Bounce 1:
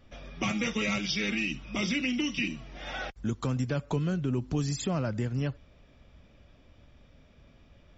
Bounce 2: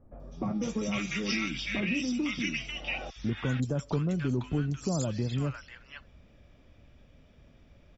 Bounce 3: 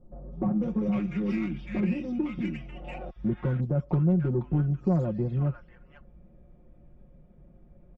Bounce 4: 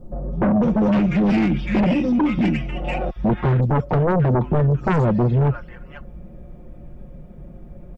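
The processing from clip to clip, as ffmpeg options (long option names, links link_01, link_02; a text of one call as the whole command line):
ffmpeg -i in.wav -filter_complex "[0:a]acrossover=split=1100|4100[link_01][link_02][link_03];[link_03]adelay=200[link_04];[link_02]adelay=500[link_05];[link_01][link_05][link_04]amix=inputs=3:normalize=0" out.wav
ffmpeg -i in.wav -af "adynamicsmooth=sensitivity=0.5:basefreq=780,aecho=1:1:5.6:0.78,volume=2.5dB" out.wav
ffmpeg -i in.wav -af "aeval=exprs='0.2*sin(PI/2*3.55*val(0)/0.2)':channel_layout=same" out.wav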